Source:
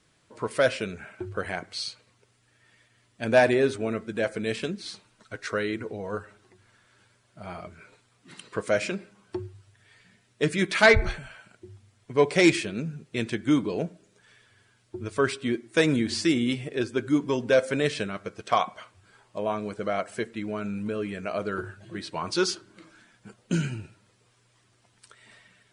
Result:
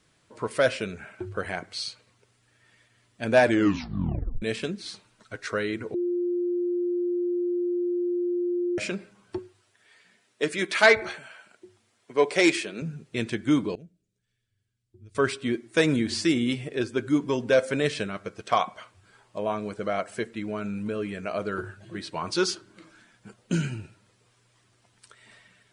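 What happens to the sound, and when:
3.43 s: tape stop 0.99 s
5.94–8.78 s: bleep 352 Hz -23.5 dBFS
9.38–12.82 s: high-pass 300 Hz
13.75–15.15 s: amplifier tone stack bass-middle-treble 10-0-1

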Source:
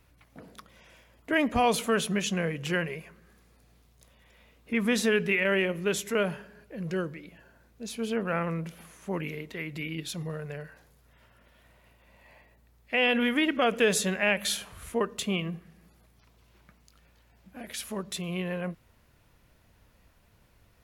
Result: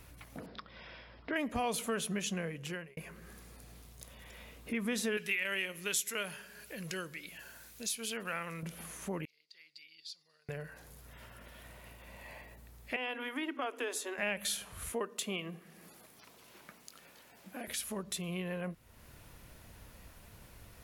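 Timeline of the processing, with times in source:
0.46–1.36 s: rippled Chebyshev low-pass 5.3 kHz, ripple 3 dB
2.33–2.97 s: fade out
5.17–8.63 s: tilt shelf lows -9.5 dB, about 1.4 kHz
9.25–10.49 s: band-pass filter 4.7 kHz, Q 15
12.96–14.18 s: rippled Chebyshev high-pass 250 Hz, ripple 9 dB
14.92–17.68 s: high-pass 250 Hz
whole clip: peaking EQ 11 kHz +6 dB 1.3 oct; compression 2:1, threshold -53 dBFS; trim +7 dB

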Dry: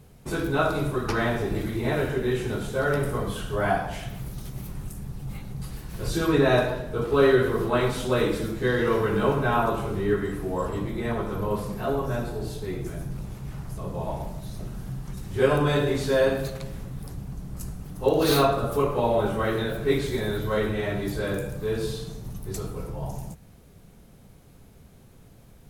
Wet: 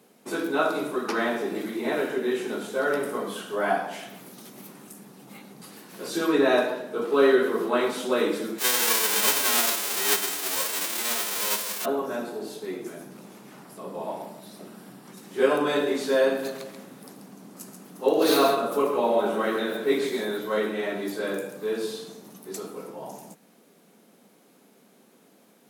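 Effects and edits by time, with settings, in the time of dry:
8.58–11.84 s: formants flattened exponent 0.1
13.63–15.12 s: band-stop 6.4 kHz, Q 8
16.29–20.25 s: delay 135 ms -7.5 dB
whole clip: steep high-pass 210 Hz 36 dB/octave

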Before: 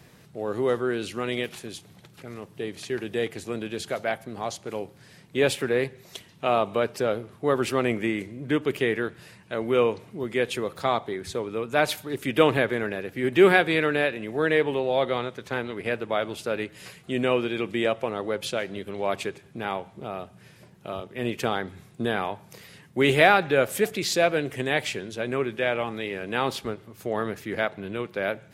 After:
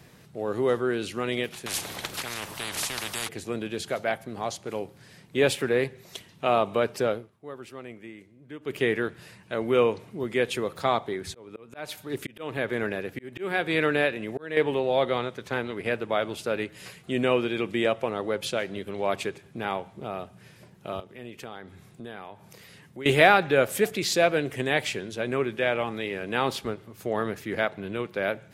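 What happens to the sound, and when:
1.66–3.29 s: spectrum-flattening compressor 10:1
7.07–8.84 s: dip -17 dB, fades 0.24 s
11.19–14.57 s: slow attack 460 ms
21.00–23.06 s: compression 2:1, threshold -47 dBFS

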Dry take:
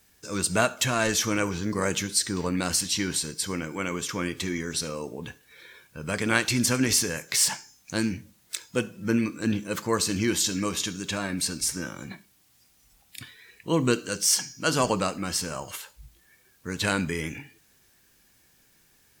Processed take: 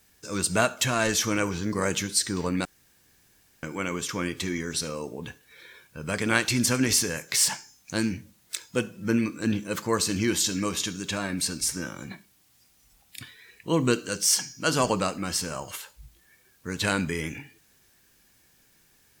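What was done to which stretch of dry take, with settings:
2.65–3.63 s: room tone

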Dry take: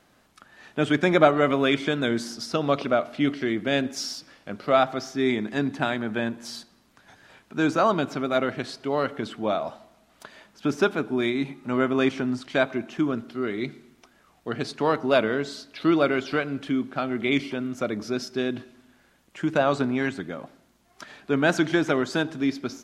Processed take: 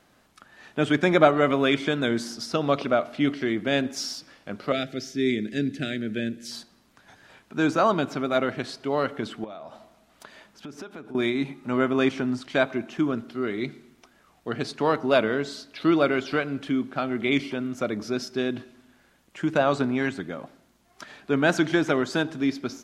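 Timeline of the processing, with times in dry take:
4.72–6.51 s: Butterworth band-stop 950 Hz, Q 0.7
9.44–11.15 s: compression, threshold -37 dBFS

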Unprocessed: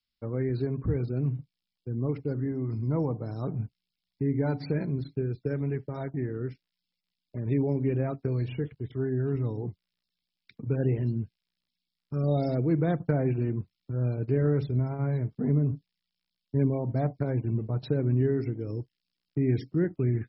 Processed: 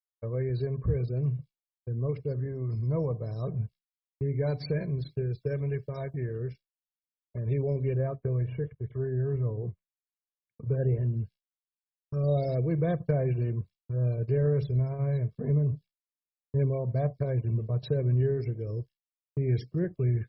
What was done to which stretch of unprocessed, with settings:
4.31–6.38 s: treble shelf 2.3 kHz +5.5 dB
7.94–11.14 s: low-pass 2 kHz 24 dB/octave
whole clip: expander -41 dBFS; dynamic bell 1.3 kHz, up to -5 dB, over -48 dBFS, Q 0.76; comb 1.8 ms, depth 73%; trim -1.5 dB

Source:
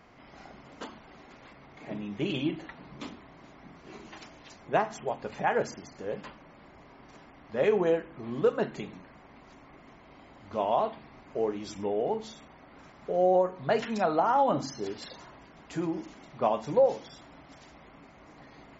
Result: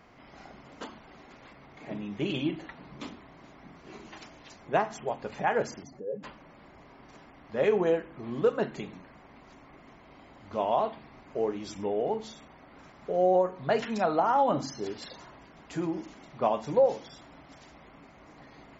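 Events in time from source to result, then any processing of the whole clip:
5.83–6.23 s: spectral contrast enhancement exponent 2

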